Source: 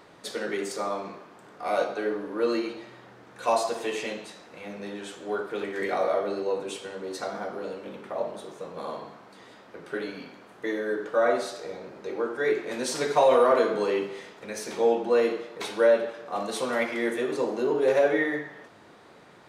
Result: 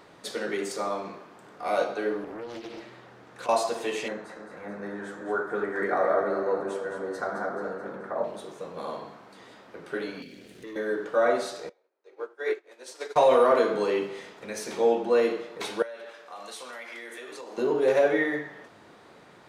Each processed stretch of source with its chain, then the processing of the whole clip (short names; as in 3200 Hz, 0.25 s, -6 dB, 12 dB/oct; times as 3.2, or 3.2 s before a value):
2.24–3.49 notches 50/100/150/200/250/300/350 Hz + compressor 12:1, threshold -34 dBFS + Doppler distortion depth 0.49 ms
4.08–8.24 resonant high shelf 2100 Hz -8.5 dB, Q 3 + split-band echo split 590 Hz, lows 0.286 s, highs 0.216 s, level -8.5 dB
10.22–10.76 Butterworth band-stop 1000 Hz, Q 0.56 + sample leveller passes 2 + compressor 3:1, threshold -43 dBFS
11.69–13.16 HPF 370 Hz 24 dB/oct + upward expander 2.5:1, over -45 dBFS
15.82–17.58 HPF 1400 Hz 6 dB/oct + compressor, threshold -37 dBFS
whole clip: dry